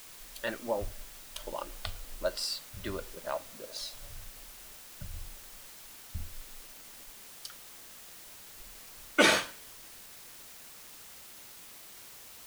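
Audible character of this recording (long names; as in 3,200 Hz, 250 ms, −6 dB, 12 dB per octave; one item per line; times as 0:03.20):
a quantiser's noise floor 8 bits, dither triangular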